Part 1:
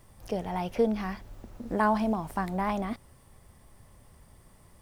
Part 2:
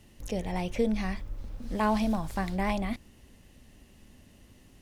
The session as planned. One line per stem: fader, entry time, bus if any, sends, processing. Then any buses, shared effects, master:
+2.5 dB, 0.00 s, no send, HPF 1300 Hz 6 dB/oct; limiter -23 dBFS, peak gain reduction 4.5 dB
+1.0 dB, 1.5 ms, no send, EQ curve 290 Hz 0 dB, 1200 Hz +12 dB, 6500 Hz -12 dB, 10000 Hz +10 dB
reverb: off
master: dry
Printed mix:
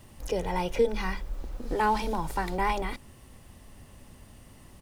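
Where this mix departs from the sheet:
stem 1: missing HPF 1300 Hz 6 dB/oct; stem 2: missing EQ curve 290 Hz 0 dB, 1200 Hz +12 dB, 6500 Hz -12 dB, 10000 Hz +10 dB

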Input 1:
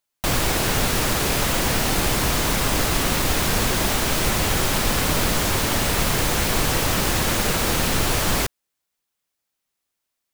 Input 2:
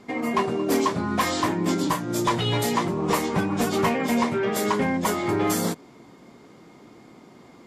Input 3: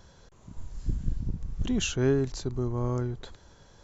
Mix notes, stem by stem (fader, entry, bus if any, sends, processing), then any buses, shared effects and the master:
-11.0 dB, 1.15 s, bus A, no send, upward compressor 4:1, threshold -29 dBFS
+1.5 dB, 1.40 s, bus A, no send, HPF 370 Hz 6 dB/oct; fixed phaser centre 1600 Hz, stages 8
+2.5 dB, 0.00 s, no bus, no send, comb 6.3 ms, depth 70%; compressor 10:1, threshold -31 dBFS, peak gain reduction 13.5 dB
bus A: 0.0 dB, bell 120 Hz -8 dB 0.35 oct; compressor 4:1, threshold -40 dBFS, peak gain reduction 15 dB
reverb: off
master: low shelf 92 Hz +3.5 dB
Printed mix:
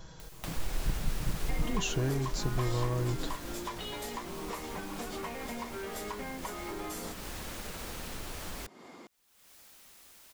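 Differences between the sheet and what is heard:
stem 1: entry 1.15 s -> 0.20 s; stem 2: missing fixed phaser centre 1600 Hz, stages 8

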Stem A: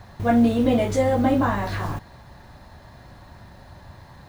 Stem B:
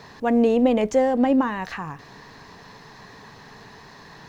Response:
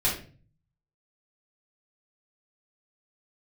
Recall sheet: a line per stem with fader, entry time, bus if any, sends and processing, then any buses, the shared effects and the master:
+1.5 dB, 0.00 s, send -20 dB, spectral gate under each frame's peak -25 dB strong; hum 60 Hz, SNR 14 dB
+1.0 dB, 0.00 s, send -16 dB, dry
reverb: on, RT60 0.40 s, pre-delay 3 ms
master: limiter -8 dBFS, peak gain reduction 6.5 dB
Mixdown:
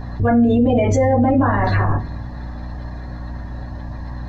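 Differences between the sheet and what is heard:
stem A +1.5 dB -> +8.0 dB; stem B +1.0 dB -> -9.5 dB

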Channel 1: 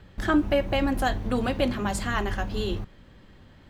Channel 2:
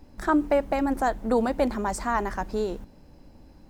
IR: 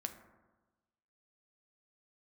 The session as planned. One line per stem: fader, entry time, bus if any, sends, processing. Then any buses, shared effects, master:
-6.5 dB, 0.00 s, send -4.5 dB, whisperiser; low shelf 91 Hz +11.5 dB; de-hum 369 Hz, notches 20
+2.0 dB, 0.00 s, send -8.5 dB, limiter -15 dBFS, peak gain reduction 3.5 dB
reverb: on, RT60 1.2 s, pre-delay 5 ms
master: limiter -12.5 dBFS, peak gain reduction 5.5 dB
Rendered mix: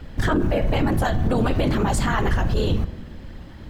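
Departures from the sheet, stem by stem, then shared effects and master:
stem 1 -6.5 dB -> +4.5 dB; stem 2: polarity flipped

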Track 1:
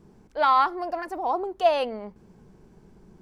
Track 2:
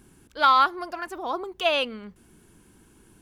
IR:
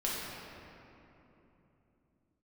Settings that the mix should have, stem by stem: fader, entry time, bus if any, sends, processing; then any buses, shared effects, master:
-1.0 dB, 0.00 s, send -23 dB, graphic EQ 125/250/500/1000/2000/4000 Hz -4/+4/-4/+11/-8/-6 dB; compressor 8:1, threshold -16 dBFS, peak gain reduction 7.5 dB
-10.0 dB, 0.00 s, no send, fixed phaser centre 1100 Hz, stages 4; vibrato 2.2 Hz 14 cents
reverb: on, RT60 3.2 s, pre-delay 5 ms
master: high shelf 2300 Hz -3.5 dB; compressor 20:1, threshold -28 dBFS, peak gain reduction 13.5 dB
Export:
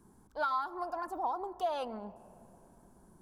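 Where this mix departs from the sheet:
stem 1 -1.0 dB -> -10.5 dB; master: missing high shelf 2300 Hz -3.5 dB

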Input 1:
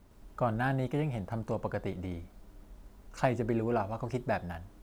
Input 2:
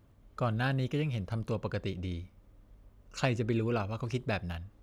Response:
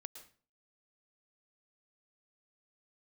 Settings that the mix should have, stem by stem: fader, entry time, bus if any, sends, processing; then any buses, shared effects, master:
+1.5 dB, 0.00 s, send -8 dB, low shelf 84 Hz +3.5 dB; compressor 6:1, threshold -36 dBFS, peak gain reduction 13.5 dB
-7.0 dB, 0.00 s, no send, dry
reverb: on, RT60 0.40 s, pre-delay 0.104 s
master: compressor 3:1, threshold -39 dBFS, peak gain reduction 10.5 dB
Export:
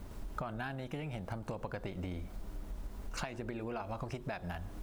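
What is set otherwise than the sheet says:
stem 1 +1.5 dB -> +8.5 dB; stem 2: polarity flipped

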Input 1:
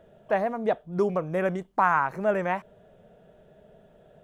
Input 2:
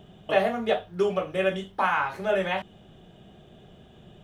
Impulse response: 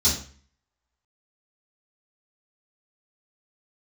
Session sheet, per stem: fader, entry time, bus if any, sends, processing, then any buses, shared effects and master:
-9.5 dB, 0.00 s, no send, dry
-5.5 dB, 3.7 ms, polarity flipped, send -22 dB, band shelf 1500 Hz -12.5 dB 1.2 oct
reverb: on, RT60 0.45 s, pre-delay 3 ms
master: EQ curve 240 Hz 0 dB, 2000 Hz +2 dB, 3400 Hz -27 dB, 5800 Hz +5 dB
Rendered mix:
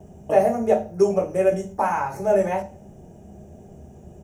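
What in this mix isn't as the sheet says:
stem 1 -9.5 dB -> -15.5 dB; stem 2 -5.5 dB -> +5.0 dB

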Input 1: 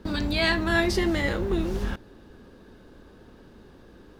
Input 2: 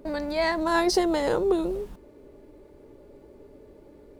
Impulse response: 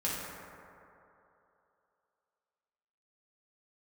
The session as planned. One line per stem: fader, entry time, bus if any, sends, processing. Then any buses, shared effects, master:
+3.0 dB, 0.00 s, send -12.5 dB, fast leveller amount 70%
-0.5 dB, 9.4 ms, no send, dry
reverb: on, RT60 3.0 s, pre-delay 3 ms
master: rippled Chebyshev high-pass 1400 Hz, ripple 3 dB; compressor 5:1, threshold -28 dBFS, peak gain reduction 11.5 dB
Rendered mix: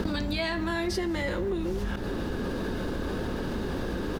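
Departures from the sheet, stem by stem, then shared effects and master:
stem 1: send -12.5 dB -> -20.5 dB; master: missing rippled Chebyshev high-pass 1400 Hz, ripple 3 dB

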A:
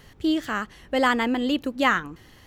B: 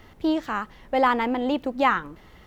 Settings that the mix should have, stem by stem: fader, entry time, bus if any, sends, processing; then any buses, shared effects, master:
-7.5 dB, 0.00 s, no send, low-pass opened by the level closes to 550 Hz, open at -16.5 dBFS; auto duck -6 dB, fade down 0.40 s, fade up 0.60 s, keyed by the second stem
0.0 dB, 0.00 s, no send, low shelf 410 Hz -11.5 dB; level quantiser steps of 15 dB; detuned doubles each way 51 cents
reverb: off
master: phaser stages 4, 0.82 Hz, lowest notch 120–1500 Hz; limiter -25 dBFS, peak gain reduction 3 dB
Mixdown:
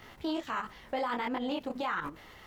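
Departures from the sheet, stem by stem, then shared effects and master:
stem B 0.0 dB -> +11.5 dB; master: missing phaser stages 4, 0.82 Hz, lowest notch 120–1500 Hz

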